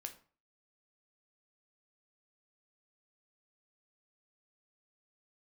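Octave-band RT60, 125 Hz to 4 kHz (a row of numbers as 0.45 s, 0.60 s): 0.40 s, 0.40 s, 0.40 s, 0.45 s, 0.35 s, 0.30 s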